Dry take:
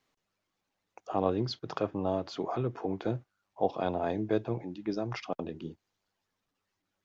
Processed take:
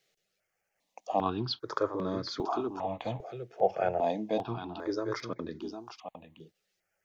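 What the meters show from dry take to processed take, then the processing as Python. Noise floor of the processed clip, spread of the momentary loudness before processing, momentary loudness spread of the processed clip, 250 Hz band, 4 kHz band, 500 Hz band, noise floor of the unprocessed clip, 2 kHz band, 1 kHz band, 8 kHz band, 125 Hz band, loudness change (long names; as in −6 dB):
−82 dBFS, 8 LU, 14 LU, −2.0 dB, +4.0 dB, +0.5 dB, −84 dBFS, +1.5 dB, +3.0 dB, can't be measured, −4.0 dB, 0.0 dB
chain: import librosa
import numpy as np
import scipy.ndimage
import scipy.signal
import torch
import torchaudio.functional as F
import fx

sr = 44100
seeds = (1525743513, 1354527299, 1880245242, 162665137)

p1 = fx.low_shelf(x, sr, hz=270.0, db=-9.5)
p2 = p1 + fx.echo_single(p1, sr, ms=756, db=-9.0, dry=0)
p3 = fx.phaser_held(p2, sr, hz=2.5, low_hz=270.0, high_hz=2800.0)
y = p3 * 10.0 ** (6.0 / 20.0)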